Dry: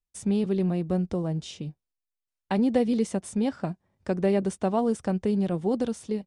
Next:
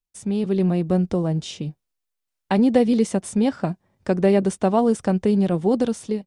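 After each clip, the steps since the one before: peaking EQ 65 Hz -5.5 dB 0.77 oct; level rider gain up to 6.5 dB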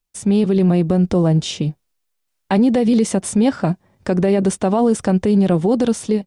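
peak limiter -16.5 dBFS, peak gain reduction 11 dB; trim +8.5 dB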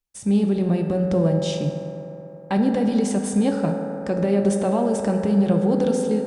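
reverberation RT60 3.7 s, pre-delay 3 ms, DRR 2 dB; trim -7 dB

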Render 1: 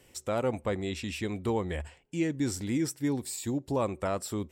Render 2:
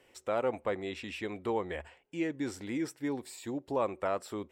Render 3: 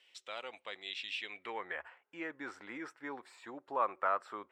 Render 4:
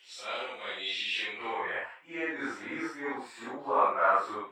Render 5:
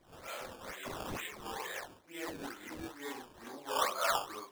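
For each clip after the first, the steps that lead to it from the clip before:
tone controls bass -13 dB, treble -12 dB
band-pass sweep 3.5 kHz -> 1.3 kHz, 1.15–1.80 s; trim +7 dB
phase randomisation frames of 200 ms; trim +8.5 dB
decimation with a swept rate 15×, swing 100% 2.2 Hz; trim -7.5 dB

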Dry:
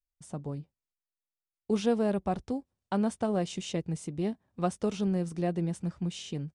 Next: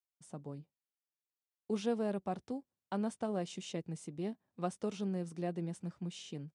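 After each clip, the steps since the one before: high-pass 140 Hz 12 dB/octave; trim -7 dB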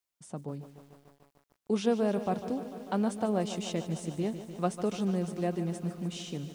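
bit-crushed delay 148 ms, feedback 80%, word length 10-bit, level -12.5 dB; trim +6.5 dB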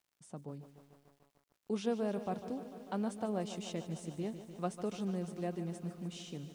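crackle 100 per s -56 dBFS; trim -7 dB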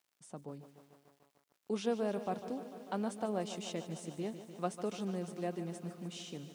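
high-pass 230 Hz 6 dB/octave; trim +2 dB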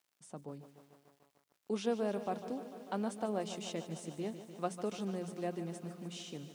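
hum notches 60/120/180 Hz

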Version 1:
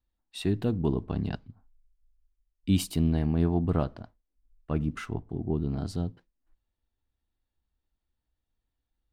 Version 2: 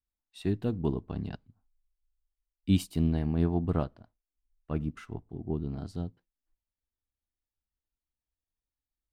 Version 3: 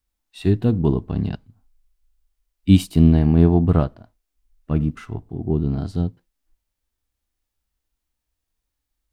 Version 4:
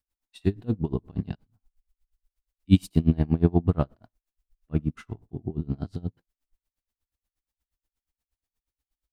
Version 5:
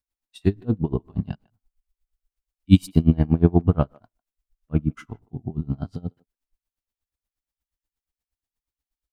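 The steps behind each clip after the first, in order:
upward expansion 1.5:1, over -44 dBFS
harmonic-percussive split harmonic +8 dB; trim +6.5 dB
logarithmic tremolo 8.4 Hz, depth 27 dB; trim -2 dB
spectral noise reduction 7 dB; speakerphone echo 150 ms, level -26 dB; trim +4 dB

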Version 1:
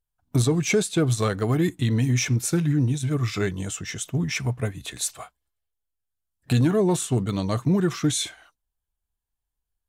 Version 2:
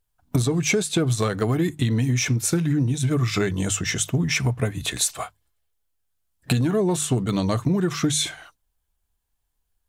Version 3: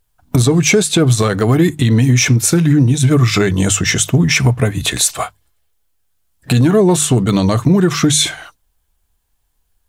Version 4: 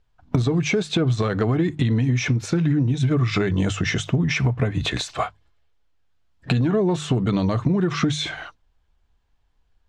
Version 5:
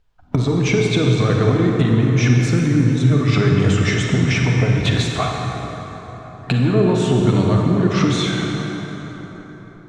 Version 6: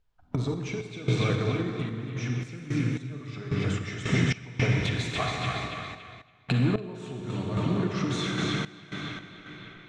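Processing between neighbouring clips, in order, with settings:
hum notches 50/100/150 Hz; compression, threshold -27 dBFS, peak gain reduction 11 dB; trim +8.5 dB
loudness maximiser +12 dB; trim -1.5 dB
compression, threshold -17 dBFS, peak gain reduction 10 dB; distance through air 170 m
reverberation RT60 4.4 s, pre-delay 33 ms, DRR -0.5 dB; trim +1.5 dB
band-passed feedback delay 282 ms, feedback 73%, band-pass 2.3 kHz, level -3 dB; random-step tremolo 3.7 Hz, depth 90%; trim -7 dB

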